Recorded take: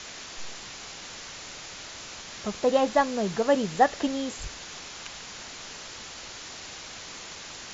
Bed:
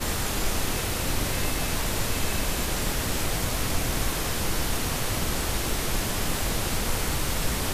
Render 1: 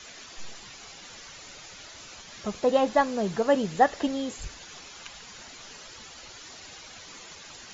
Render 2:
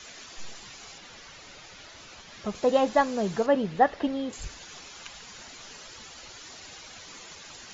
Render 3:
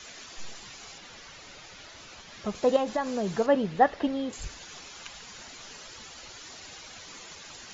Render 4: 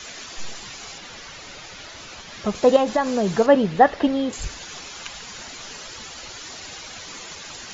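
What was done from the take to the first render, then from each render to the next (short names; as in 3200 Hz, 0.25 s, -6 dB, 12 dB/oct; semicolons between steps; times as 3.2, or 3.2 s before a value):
denoiser 9 dB, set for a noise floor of -42 dBFS
0.98–2.55 air absorption 74 m; 3.46–4.33 air absorption 180 m
2.76–3.35 compressor 5:1, threshold -24 dBFS
gain +8 dB; limiter -3 dBFS, peak gain reduction 2.5 dB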